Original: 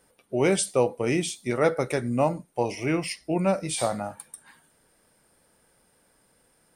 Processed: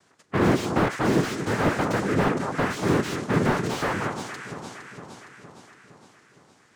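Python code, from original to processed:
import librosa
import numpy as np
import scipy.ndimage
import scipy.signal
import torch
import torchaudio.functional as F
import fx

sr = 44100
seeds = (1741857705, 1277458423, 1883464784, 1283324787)

y = fx.noise_vocoder(x, sr, seeds[0], bands=3)
y = fx.echo_alternate(y, sr, ms=231, hz=1200.0, feedback_pct=75, wet_db=-10.0)
y = fx.slew_limit(y, sr, full_power_hz=54.0)
y = F.gain(torch.from_numpy(y), 3.5).numpy()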